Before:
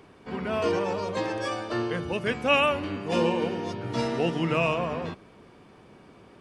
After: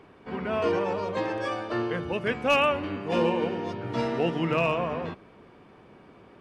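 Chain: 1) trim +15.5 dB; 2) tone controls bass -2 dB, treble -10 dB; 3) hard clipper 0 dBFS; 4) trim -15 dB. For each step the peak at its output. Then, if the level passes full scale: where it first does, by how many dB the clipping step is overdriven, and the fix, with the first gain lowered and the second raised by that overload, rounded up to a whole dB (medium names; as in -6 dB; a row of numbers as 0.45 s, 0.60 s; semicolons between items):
+5.5 dBFS, +5.0 dBFS, 0.0 dBFS, -15.0 dBFS; step 1, 5.0 dB; step 1 +10.5 dB, step 4 -10 dB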